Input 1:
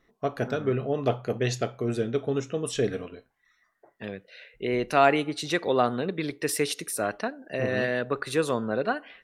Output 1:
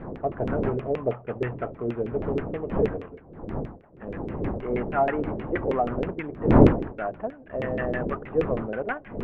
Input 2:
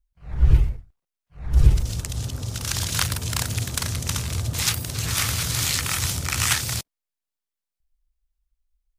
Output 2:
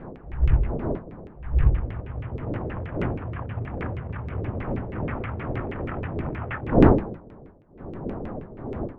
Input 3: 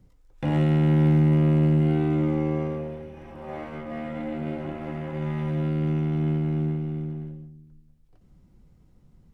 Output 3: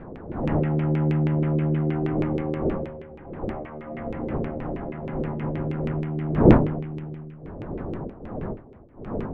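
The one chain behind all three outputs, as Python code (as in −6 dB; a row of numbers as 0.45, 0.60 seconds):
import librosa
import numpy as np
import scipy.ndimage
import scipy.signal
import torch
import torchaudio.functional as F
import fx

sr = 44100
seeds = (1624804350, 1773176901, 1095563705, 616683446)

y = fx.cvsd(x, sr, bps=16000)
y = fx.dmg_wind(y, sr, seeds[0], corner_hz=320.0, level_db=-26.0)
y = fx.filter_lfo_lowpass(y, sr, shape='saw_down', hz=6.3, low_hz=370.0, high_hz=2500.0, q=2.3)
y = F.gain(torch.from_numpy(y), -3.5).numpy()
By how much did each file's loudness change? +1.0, −3.5, −1.0 LU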